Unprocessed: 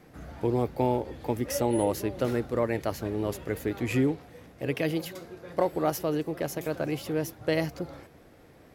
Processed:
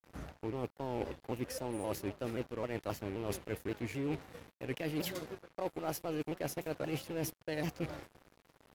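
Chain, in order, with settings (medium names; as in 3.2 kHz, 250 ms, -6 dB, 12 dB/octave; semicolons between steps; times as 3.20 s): rattle on loud lows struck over -37 dBFS, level -36 dBFS; gate with hold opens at -45 dBFS; reverse; compression 16:1, threshold -35 dBFS, peak gain reduction 16.5 dB; reverse; crossover distortion -51 dBFS; vibrato with a chosen wave saw down 3.8 Hz, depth 160 cents; trim +3 dB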